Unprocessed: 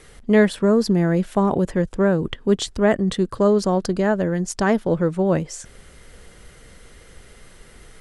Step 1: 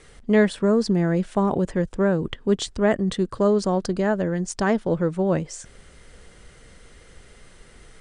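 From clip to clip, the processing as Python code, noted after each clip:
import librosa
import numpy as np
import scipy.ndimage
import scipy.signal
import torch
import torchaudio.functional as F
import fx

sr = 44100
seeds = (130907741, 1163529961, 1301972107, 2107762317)

y = scipy.signal.sosfilt(scipy.signal.butter(16, 10000.0, 'lowpass', fs=sr, output='sos'), x)
y = y * 10.0 ** (-2.5 / 20.0)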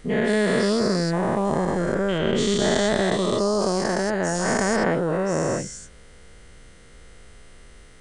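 y = fx.spec_dilate(x, sr, span_ms=480)
y = y * 10.0 ** (-6.5 / 20.0)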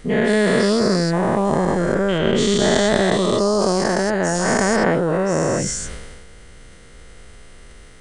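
y = fx.sustainer(x, sr, db_per_s=31.0)
y = y * 10.0 ** (4.0 / 20.0)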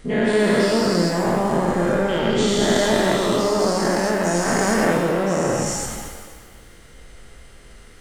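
y = fx.rev_shimmer(x, sr, seeds[0], rt60_s=1.4, semitones=7, shimmer_db=-8, drr_db=2.5)
y = y * 10.0 ** (-3.5 / 20.0)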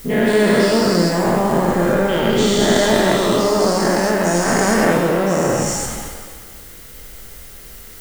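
y = fx.dmg_noise_colour(x, sr, seeds[1], colour='blue', level_db=-44.0)
y = y * 10.0 ** (3.5 / 20.0)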